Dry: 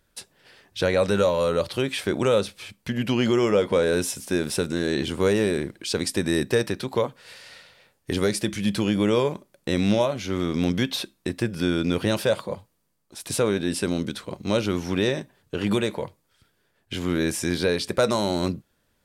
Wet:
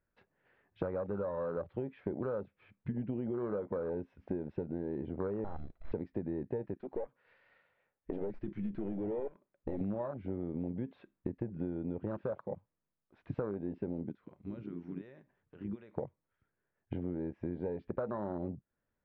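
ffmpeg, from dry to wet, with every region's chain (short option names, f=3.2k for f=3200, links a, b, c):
-filter_complex "[0:a]asettb=1/sr,asplit=3[a][b][c];[a]atrim=end=5.444[d];[b]atrim=start=5.44:end=5.92,asetpts=PTS-STARTPTS,afade=t=in:d=0.004:c=qsin,afade=t=out:st=0.476:d=0.004:c=qsin,equalizer=f=340:t=o:w=1.2:g=3,aeval=exprs='val(0)*sin(2*PI*2000*n/s)':c=same,aeval=exprs='abs(val(0))':c=same[e];[c]atrim=start=5.916[f];[d][e]acrossfade=d=0.004:c1=hsin:c2=qsin[g];[g][f]acrossfade=d=0.004:c1=qsin:c2=hsin,asettb=1/sr,asplit=3[h][i][j];[h]atrim=end=6.744[k];[i]atrim=start=6.74:end=9.81,asetpts=PTS-STARTPTS,afade=t=in:d=0.004:c=qsin,afade=t=out:st=3.066:d=0.004:c=qsin,bass=f=250:g=-5,treble=f=4k:g=5,aeval=exprs='(tanh(15.8*val(0)+0.55)-tanh(0.55))/15.8':c=same[l];[j]atrim=start=9.806[m];[k][l]acrossfade=d=0.004:c1=hsin:c2=qsin[n];[n][m]acrossfade=d=0.004:c1=qsin:c2=hsin,asettb=1/sr,asplit=3[o][p][q];[o]atrim=end=14.124[r];[p]atrim=start=14.12:end=15.98,asetpts=PTS-STARTPTS,afade=t=in:d=0.004:c=qsin,afade=t=out:st=1.856:d=0.004:c=qsin,equalizer=f=7.3k:w=0.84:g=14.5,acompressor=threshold=-41dB:ratio=2.5:attack=3.2:release=140:knee=1:detection=peak[s];[q]atrim=start=15.976[t];[r][s]acrossfade=d=0.004:c1=hsin:c2=qsin[u];[u][t]acrossfade=d=0.004:c1=qsin:c2=hsin,lowpass=f=2.1k:w=0.5412,lowpass=f=2.1k:w=1.3066,afwtdn=0.0501,acompressor=threshold=-35dB:ratio=8,volume=1dB"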